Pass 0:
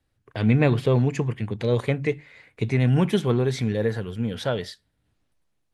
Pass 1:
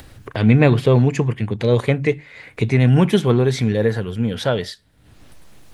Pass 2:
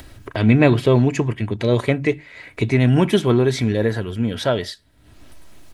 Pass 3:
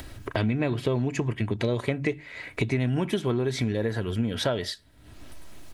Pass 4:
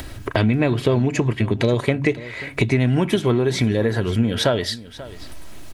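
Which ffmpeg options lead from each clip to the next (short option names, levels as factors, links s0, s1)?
-af "acompressor=mode=upward:threshold=0.0355:ratio=2.5,volume=2"
-af "aecho=1:1:3.1:0.37"
-af "acompressor=threshold=0.0794:ratio=12"
-af "aecho=1:1:537:0.133,volume=2.37"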